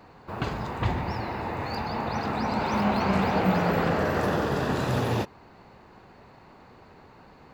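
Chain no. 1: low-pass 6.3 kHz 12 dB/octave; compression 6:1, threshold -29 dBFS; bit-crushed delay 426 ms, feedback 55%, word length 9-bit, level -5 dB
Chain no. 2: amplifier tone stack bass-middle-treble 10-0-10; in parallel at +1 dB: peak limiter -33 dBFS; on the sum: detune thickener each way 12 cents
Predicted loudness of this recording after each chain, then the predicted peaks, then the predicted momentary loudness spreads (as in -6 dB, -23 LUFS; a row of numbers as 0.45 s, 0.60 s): -32.5 LUFS, -37.0 LUFS; -18.5 dBFS, -22.5 dBFS; 18 LU, 5 LU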